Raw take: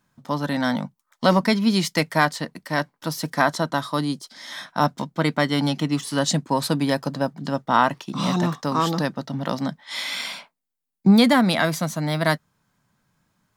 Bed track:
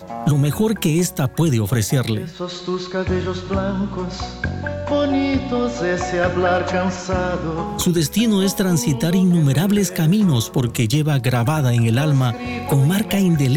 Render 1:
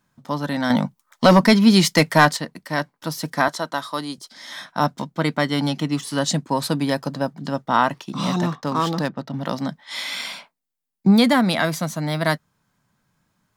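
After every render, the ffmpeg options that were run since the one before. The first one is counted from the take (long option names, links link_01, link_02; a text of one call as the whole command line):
ffmpeg -i in.wav -filter_complex "[0:a]asettb=1/sr,asplit=3[link_01][link_02][link_03];[link_01]atrim=end=0.704[link_04];[link_02]atrim=start=0.7:end=2.37,asetpts=PTS-STARTPTS,afade=type=in:duration=0.004:curve=qsin,afade=type=out:start_time=1.666:duration=0.004:curve=qsin,acontrast=79[link_05];[link_03]atrim=start=2.366[link_06];[link_04][link_05]acrossfade=duration=0.004:curve1=hsin:curve2=qsin[link_07];[link_07][link_06]acrossfade=duration=0.004:curve1=qsin:curve2=hsin,asettb=1/sr,asplit=3[link_08][link_09][link_10];[link_08]atrim=end=3.484[link_11];[link_09]atrim=start=3.48:end=4.18,asetpts=PTS-STARTPTS,afade=type=in:duration=0.004:curve=qsin,afade=type=out:start_time=0.696:duration=0.004:curve=qsin,highpass=frequency=470:poles=1[link_12];[link_10]atrim=start=4.176[link_13];[link_11][link_12]acrossfade=duration=0.004:curve1=hsin:curve2=qsin[link_14];[link_14][link_13]acrossfade=duration=0.004:curve1=qsin:curve2=hsin,asettb=1/sr,asplit=3[link_15][link_16][link_17];[link_15]atrim=end=8.524[link_18];[link_16]atrim=start=8.52:end=9.34,asetpts=PTS-STARTPTS,afade=type=in:duration=0.004:curve=qsin,afade=type=out:start_time=0.816:duration=0.004:curve=qsin,adynamicsmooth=sensitivity=7:basefreq=2800[link_19];[link_17]atrim=start=9.336[link_20];[link_18][link_19]acrossfade=duration=0.004:curve1=hsin:curve2=qsin[link_21];[link_21][link_20]acrossfade=duration=0.004:curve1=qsin:curve2=hsin" out.wav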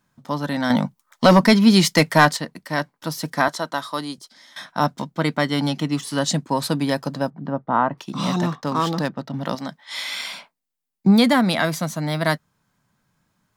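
ffmpeg -i in.wav -filter_complex "[0:a]asplit=3[link_01][link_02][link_03];[link_01]afade=type=out:start_time=7.29:duration=0.02[link_04];[link_02]lowpass=1300,afade=type=in:start_time=7.29:duration=0.02,afade=type=out:start_time=7.97:duration=0.02[link_05];[link_03]afade=type=in:start_time=7.97:duration=0.02[link_06];[link_04][link_05][link_06]amix=inputs=3:normalize=0,asettb=1/sr,asplit=3[link_07][link_08][link_09];[link_07]atrim=end=9.554[link_10];[link_08]atrim=start=9.55:end=10.33,asetpts=PTS-STARTPTS,afade=type=in:duration=0.004:curve=qsin,afade=type=out:start_time=0.776:duration=0.004:curve=qsin,lowshelf=frequency=310:gain=-9.5[link_11];[link_09]atrim=start=10.326[link_12];[link_10][link_11]acrossfade=duration=0.004:curve1=hsin:curve2=qsin[link_13];[link_13][link_12]acrossfade=duration=0.004:curve1=qsin:curve2=hsin,asplit=2[link_14][link_15];[link_14]atrim=end=4.56,asetpts=PTS-STARTPTS,afade=type=out:start_time=4.07:duration=0.49:silence=0.133352[link_16];[link_15]atrim=start=4.56,asetpts=PTS-STARTPTS,afade=type=in:duration=0.004:curve=hsin:silence=0.133352[link_17];[link_16][link_17]concat=n=2:v=0:a=1" out.wav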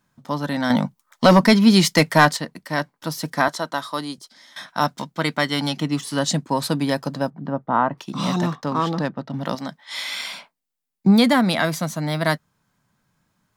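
ffmpeg -i in.wav -filter_complex "[0:a]asettb=1/sr,asplit=3[link_01][link_02][link_03];[link_01]atrim=end=4.684[link_04];[link_02]atrim=start=4.68:end=5.77,asetpts=PTS-STARTPTS,afade=type=in:duration=0.004:curve=qsin,afade=type=out:start_time=1.086:duration=0.004:curve=qsin,tiltshelf=frequency=900:gain=-3.5[link_05];[link_03]atrim=start=5.766[link_06];[link_04][link_05]acrossfade=duration=0.004:curve1=hsin:curve2=qsin[link_07];[link_07][link_06]acrossfade=duration=0.004:curve1=qsin:curve2=hsin,asettb=1/sr,asplit=3[link_08][link_09][link_10];[link_08]atrim=end=8.654[link_11];[link_09]atrim=start=8.65:end=9.3,asetpts=PTS-STARTPTS,afade=type=in:duration=0.004:curve=qsin,afade=type=out:start_time=0.646:duration=0.004:curve=qsin,aemphasis=mode=reproduction:type=50kf[link_12];[link_10]atrim=start=9.296[link_13];[link_11][link_12]acrossfade=duration=0.004:curve1=hsin:curve2=qsin[link_14];[link_14][link_13]acrossfade=duration=0.004:curve1=qsin:curve2=hsin" out.wav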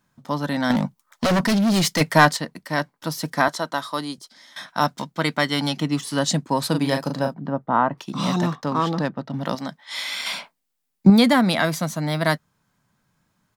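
ffmpeg -i in.wav -filter_complex "[0:a]asettb=1/sr,asplit=3[link_01][link_02][link_03];[link_01]atrim=end=0.714[link_04];[link_02]atrim=start=0.71:end=2.01,asetpts=PTS-STARTPTS,afade=type=in:duration=0.004:curve=qsin,afade=type=out:start_time=1.296:duration=0.004:curve=qsin,asoftclip=type=hard:threshold=-16.5dB[link_05];[link_03]atrim=start=2.006[link_06];[link_04][link_05]acrossfade=duration=0.004:curve1=hsin:curve2=qsin[link_07];[link_07][link_06]acrossfade=duration=0.004:curve1=qsin:curve2=hsin,asplit=3[link_08][link_09][link_10];[link_08]afade=type=out:start_time=6.73:duration=0.02[link_11];[link_09]asplit=2[link_12][link_13];[link_13]adelay=38,volume=-6dB[link_14];[link_12][link_14]amix=inputs=2:normalize=0,afade=type=in:start_time=6.73:duration=0.02,afade=type=out:start_time=7.36:duration=0.02[link_15];[link_10]afade=type=in:start_time=7.36:duration=0.02[link_16];[link_11][link_15][link_16]amix=inputs=3:normalize=0,asettb=1/sr,asplit=3[link_17][link_18][link_19];[link_17]atrim=end=10.264[link_20];[link_18]atrim=start=10.26:end=11.1,asetpts=PTS-STARTPTS,afade=type=in:duration=0.004:curve=qsin,afade=type=out:start_time=0.836:duration=0.004:curve=qsin,acontrast=38[link_21];[link_19]atrim=start=11.096[link_22];[link_20][link_21]acrossfade=duration=0.004:curve1=hsin:curve2=qsin[link_23];[link_23][link_22]acrossfade=duration=0.004:curve1=qsin:curve2=hsin" out.wav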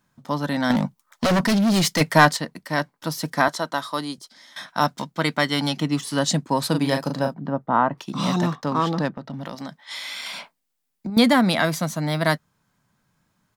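ffmpeg -i in.wav -filter_complex "[0:a]asettb=1/sr,asplit=3[link_01][link_02][link_03];[link_01]atrim=end=9.174[link_04];[link_02]atrim=start=9.17:end=11.17,asetpts=PTS-STARTPTS,afade=type=in:duration=0.004:curve=qsin,afade=type=out:start_time=1.996:duration=0.004:curve=qsin,acompressor=threshold=-29dB:ratio=5:attack=3.2:release=140:knee=1:detection=peak[link_05];[link_03]atrim=start=11.166[link_06];[link_04][link_05]acrossfade=duration=0.004:curve1=hsin:curve2=qsin[link_07];[link_07][link_06]acrossfade=duration=0.004:curve1=qsin:curve2=hsin" out.wav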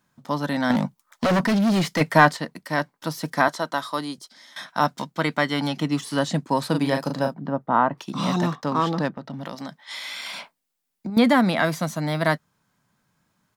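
ffmpeg -i in.wav -filter_complex "[0:a]acrossover=split=2800[link_01][link_02];[link_02]acompressor=threshold=-33dB:ratio=4:attack=1:release=60[link_03];[link_01][link_03]amix=inputs=2:normalize=0,lowshelf=frequency=83:gain=-7" out.wav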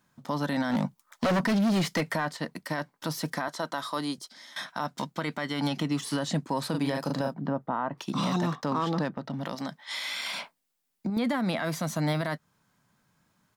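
ffmpeg -i in.wav -af "acompressor=threshold=-22dB:ratio=6,alimiter=limit=-19dB:level=0:latency=1:release=23" out.wav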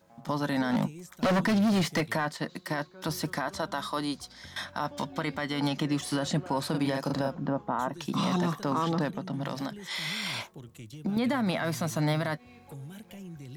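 ffmpeg -i in.wav -i bed.wav -filter_complex "[1:a]volume=-27.5dB[link_01];[0:a][link_01]amix=inputs=2:normalize=0" out.wav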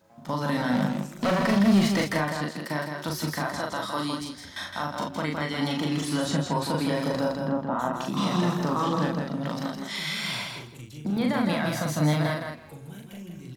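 ffmpeg -i in.wav -filter_complex "[0:a]asplit=2[link_01][link_02];[link_02]adelay=40,volume=-3dB[link_03];[link_01][link_03]amix=inputs=2:normalize=0,aecho=1:1:163|326|489:0.562|0.0956|0.0163" out.wav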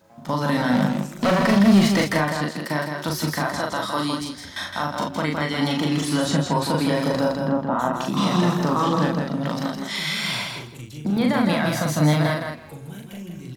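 ffmpeg -i in.wav -af "volume=5dB" out.wav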